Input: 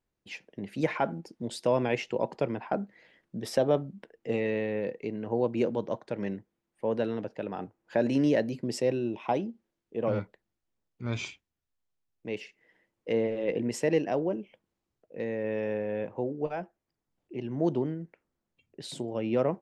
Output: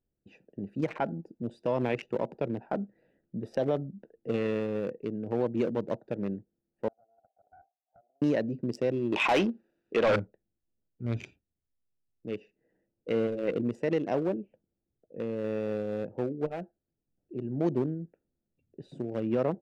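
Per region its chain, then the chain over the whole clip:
6.88–8.22 compressor 12:1, threshold -35 dBFS + Butterworth band-pass 730 Hz, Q 7.8 + Doppler distortion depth 0.2 ms
9.12–10.16 band shelf 3200 Hz +8.5 dB 2.5 oct + overdrive pedal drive 23 dB, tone 3400 Hz, clips at -13.5 dBFS
whole clip: Wiener smoothing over 41 samples; limiter -19.5 dBFS; gain +1.5 dB

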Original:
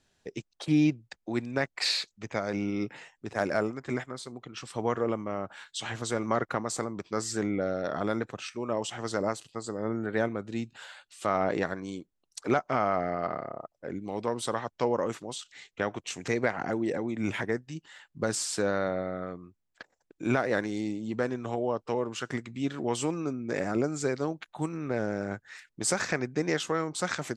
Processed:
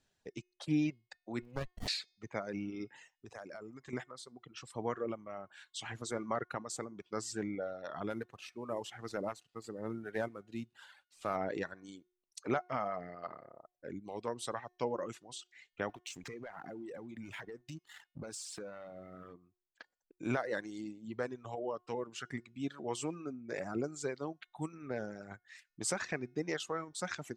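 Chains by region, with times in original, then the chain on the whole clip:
1.42–1.88 notch 910 Hz, Q 20 + running maximum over 33 samples
2.95–3.93 bell 6300 Hz +5.5 dB 0.27 oct + compressor 4:1, threshold -36 dBFS
8.1–11.36 CVSD 64 kbps + high shelf 6400 Hz -10.5 dB
15.89–19.34 sample leveller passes 2 + compressor 16:1, threshold -33 dBFS
whole clip: de-hum 360.9 Hz, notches 18; reverb removal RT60 1.9 s; gain -7 dB

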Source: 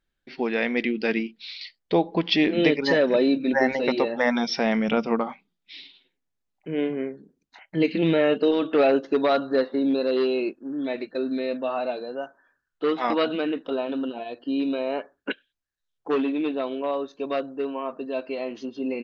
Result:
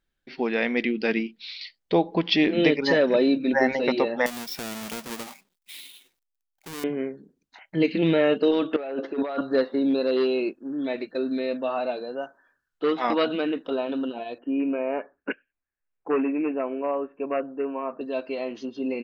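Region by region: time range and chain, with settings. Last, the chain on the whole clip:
4.26–6.84 half-waves squared off + tilt +2 dB/oct + compressor 2:1, threshold -42 dBFS
8.76–9.41 BPF 280–2800 Hz + negative-ratio compressor -29 dBFS
14.38–18.01 steep low-pass 2700 Hz 96 dB/oct + bell 120 Hz -13.5 dB 0.23 oct
whole clip: dry

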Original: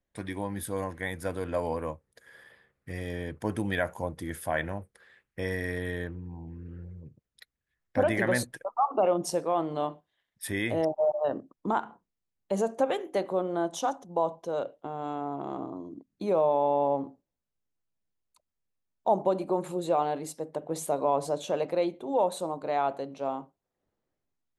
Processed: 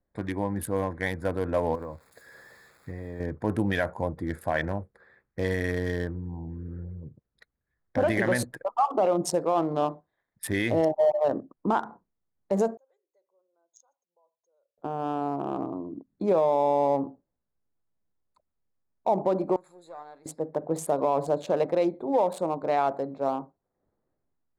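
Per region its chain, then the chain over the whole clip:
1.75–3.2 switching spikes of -36.5 dBFS + compressor 16:1, threshold -35 dBFS
12.77–14.78 formant sharpening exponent 1.5 + band-pass 6500 Hz, Q 20 + comb 2 ms, depth 42%
19.56–20.26 half-wave gain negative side -3 dB + pre-emphasis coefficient 0.97
whole clip: Wiener smoothing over 15 samples; limiter -19.5 dBFS; gain +5 dB

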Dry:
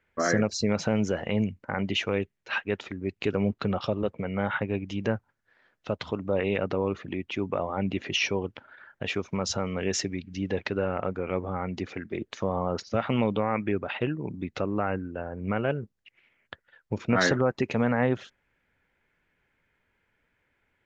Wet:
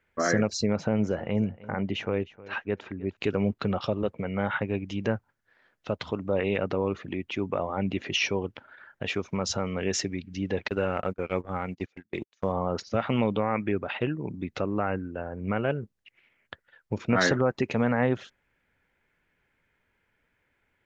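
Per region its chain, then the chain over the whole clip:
0.66–3.17 high shelf 2300 Hz -11.5 dB + feedback echo 0.31 s, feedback 15%, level -19 dB
10.68–12.52 gate -33 dBFS, range -33 dB + high shelf 2800 Hz +11 dB
whole clip: dry

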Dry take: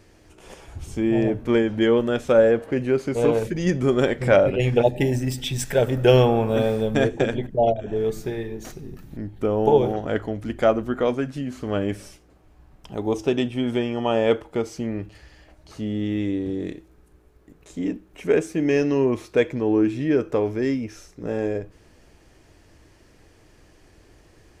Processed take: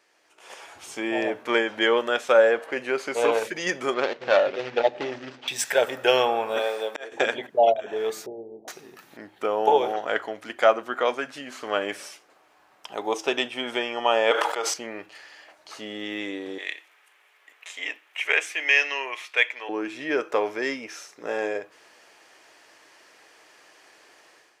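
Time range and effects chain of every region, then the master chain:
3.94–5.48 median filter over 25 samples + LPF 5700 Hz 24 dB/oct
6.59–7.12 HPF 300 Hz 24 dB/oct + auto swell 0.463 s
8.26–8.68 steep low-pass 740 Hz 48 dB/oct + bell 440 Hz -3.5 dB 1.7 oct
14.31–14.74 HPF 500 Hz + bell 2200 Hz -5 dB 0.23 oct + sustainer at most 48 dB/s
16.58–19.69 HPF 750 Hz + band shelf 2500 Hz +9 dB 1.1 oct
whole clip: HPF 810 Hz 12 dB/oct; high shelf 6500 Hz -6.5 dB; AGC gain up to 11.5 dB; gain -3.5 dB

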